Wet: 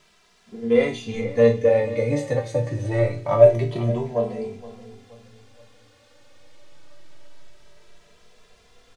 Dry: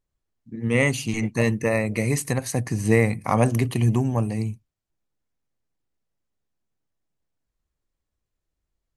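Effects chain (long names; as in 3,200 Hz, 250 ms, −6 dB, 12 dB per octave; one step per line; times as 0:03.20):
leveller curve on the samples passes 1
reversed playback
upward compression, threshold −21 dBFS
reversed playback
resonators tuned to a chord G2 minor, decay 0.34 s
hollow resonant body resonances 530/3,500 Hz, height 16 dB, ringing for 20 ms
in parallel at −5.5 dB: bit-depth reduction 8 bits, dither triangular
on the sum: high-frequency loss of the air 110 metres
repeating echo 473 ms, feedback 37%, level −16 dB
barber-pole flanger 2.6 ms +0.25 Hz
level +4 dB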